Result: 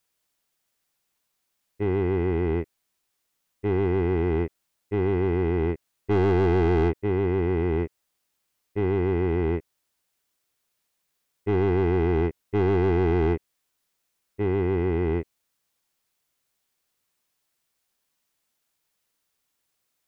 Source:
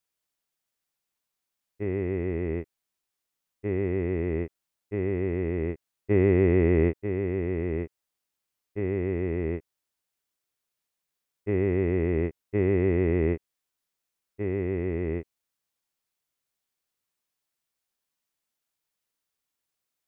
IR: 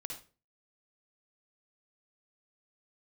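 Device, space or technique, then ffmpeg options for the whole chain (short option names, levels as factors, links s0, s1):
saturation between pre-emphasis and de-emphasis: -af "highshelf=f=2600:g=8.5,asoftclip=type=tanh:threshold=0.0531,highshelf=f=2600:g=-8.5,volume=2.37"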